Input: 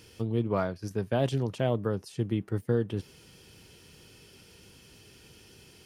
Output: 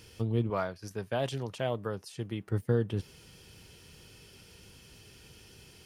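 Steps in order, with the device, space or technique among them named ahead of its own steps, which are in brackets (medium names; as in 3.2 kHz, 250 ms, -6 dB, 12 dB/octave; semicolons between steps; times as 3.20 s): 0.50–2.47 s: bass shelf 370 Hz -9 dB; low shelf boost with a cut just above (bass shelf 68 Hz +5.5 dB; peaking EQ 300 Hz -3 dB 1.1 oct)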